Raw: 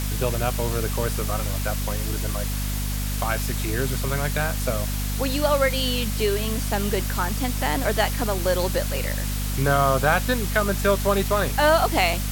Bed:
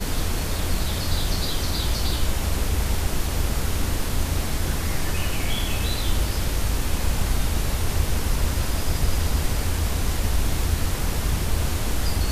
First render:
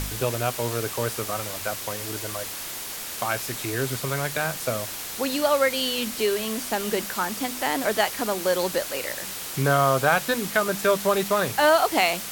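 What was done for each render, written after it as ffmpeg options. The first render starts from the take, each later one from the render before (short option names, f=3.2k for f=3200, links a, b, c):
-af "bandreject=f=50:t=h:w=4,bandreject=f=100:t=h:w=4,bandreject=f=150:t=h:w=4,bandreject=f=200:t=h:w=4,bandreject=f=250:t=h:w=4"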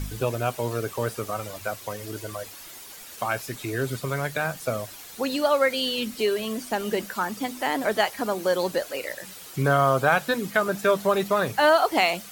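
-af "afftdn=nr=11:nf=-34"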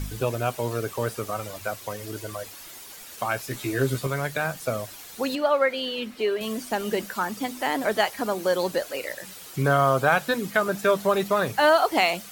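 -filter_complex "[0:a]asettb=1/sr,asplit=3[a][b][c];[a]atrim=end=3.494[d];[b]atrim=start=3.49:end=4.07,asetpts=PTS-STARTPTS,afade=t=in:d=0.004:c=qsin,afade=t=out:st=0.576:d=0.004:c=qsin,asplit=2[e][f];[f]adelay=15,volume=-2.5dB[g];[e][g]amix=inputs=2:normalize=0,atrim=end_sample=25578[h];[c]atrim=start=4.066[i];[d][h]acrossfade=d=0.004:c1=hsin:c2=qsin[j];[j][i]acrossfade=d=0.004:c1=qsin:c2=hsin,asettb=1/sr,asplit=3[k][l][m];[k]atrim=end=5.354[n];[l]atrim=start=5.35:end=6.41,asetpts=PTS-STARTPTS,afade=t=in:d=0.004:c=qsin,afade=t=out:st=1.056:d=0.004:c=qsin,bass=f=250:g=-7,treble=f=4k:g=-13[o];[m]atrim=start=6.406[p];[n][o]acrossfade=d=0.004:c1=hsin:c2=qsin[q];[q][p]acrossfade=d=0.004:c1=qsin:c2=hsin"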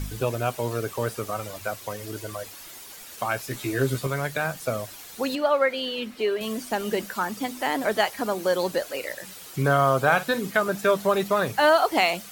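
-filter_complex "[0:a]asettb=1/sr,asplit=3[a][b][c];[a]atrim=end=9.984[d];[b]atrim=start=9.98:end=10.52,asetpts=PTS-STARTPTS,afade=t=in:d=0.004:c=qsin,afade=t=out:st=0.536:d=0.004:c=qsin,asplit=2[e][f];[f]adelay=48,volume=-14dB[g];[e][g]amix=inputs=2:normalize=0,atrim=end_sample=23814[h];[c]atrim=start=10.516[i];[d][h]acrossfade=d=0.004:c1=hsin:c2=qsin[j];[j][i]acrossfade=d=0.004:c1=qsin:c2=hsin"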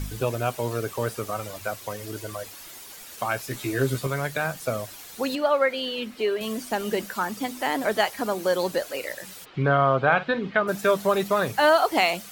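-filter_complex "[0:a]asplit=3[a][b][c];[a]afade=t=out:st=9.44:d=0.02[d];[b]lowpass=f=3.5k:w=0.5412,lowpass=f=3.5k:w=1.3066,afade=t=in:st=9.44:d=0.02,afade=t=out:st=10.67:d=0.02[e];[c]afade=t=in:st=10.67:d=0.02[f];[d][e][f]amix=inputs=3:normalize=0"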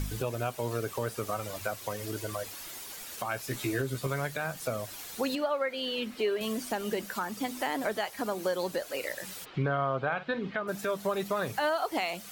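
-af "acompressor=threshold=-33dB:ratio=1.5,alimiter=limit=-20dB:level=0:latency=1:release=310"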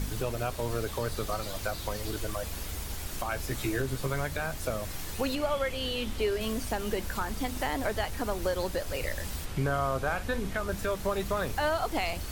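-filter_complex "[1:a]volume=-15dB[a];[0:a][a]amix=inputs=2:normalize=0"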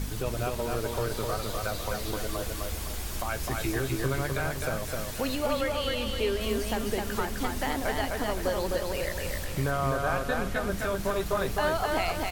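-af "aecho=1:1:257|514|771|1028|1285:0.708|0.29|0.119|0.0488|0.02"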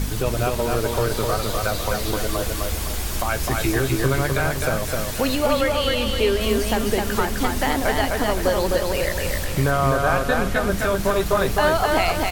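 -af "volume=8.5dB"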